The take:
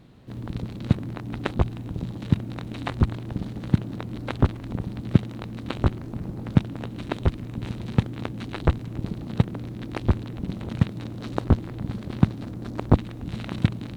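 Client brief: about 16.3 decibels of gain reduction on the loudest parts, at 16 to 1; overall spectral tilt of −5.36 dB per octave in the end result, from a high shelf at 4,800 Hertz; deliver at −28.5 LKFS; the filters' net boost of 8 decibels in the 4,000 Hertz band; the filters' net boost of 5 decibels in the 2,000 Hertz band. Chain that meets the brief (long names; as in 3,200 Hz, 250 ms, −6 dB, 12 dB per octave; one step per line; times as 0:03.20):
parametric band 2,000 Hz +4 dB
parametric band 4,000 Hz +6.5 dB
high-shelf EQ 4,800 Hz +4.5 dB
downward compressor 16 to 1, threshold −28 dBFS
level +7 dB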